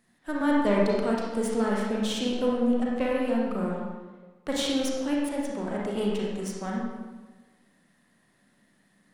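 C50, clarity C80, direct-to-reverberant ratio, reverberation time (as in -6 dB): -1.0 dB, 2.0 dB, -3.5 dB, 1.3 s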